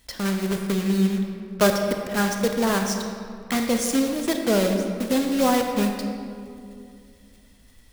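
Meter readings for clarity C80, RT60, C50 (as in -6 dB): 6.0 dB, 2.4 s, 4.5 dB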